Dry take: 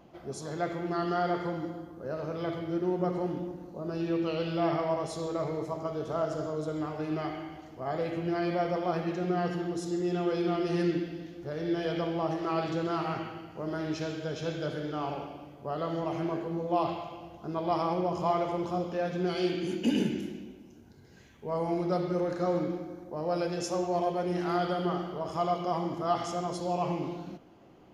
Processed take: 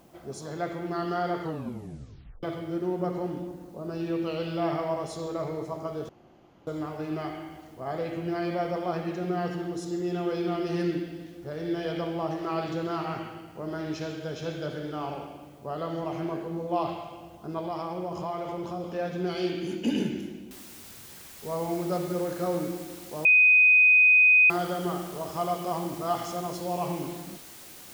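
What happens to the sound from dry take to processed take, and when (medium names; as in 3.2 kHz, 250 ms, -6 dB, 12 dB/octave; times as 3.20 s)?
1.41 s: tape stop 1.02 s
6.09–6.67 s: room tone
17.60–18.84 s: compression 3:1, threshold -30 dBFS
20.51 s: noise floor step -67 dB -47 dB
23.25–24.50 s: bleep 2.5 kHz -14.5 dBFS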